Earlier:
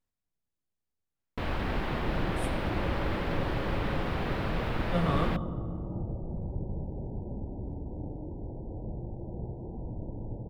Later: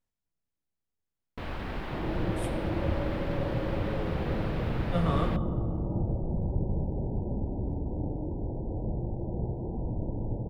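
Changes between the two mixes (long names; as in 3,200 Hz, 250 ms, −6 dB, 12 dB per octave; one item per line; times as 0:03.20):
first sound −4.5 dB
second sound +5.5 dB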